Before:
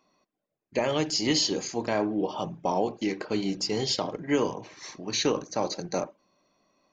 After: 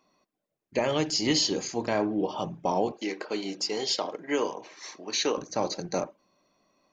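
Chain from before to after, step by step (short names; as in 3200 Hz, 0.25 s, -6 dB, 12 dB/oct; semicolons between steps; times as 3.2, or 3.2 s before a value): 2.92–5.38 HPF 350 Hz 12 dB/oct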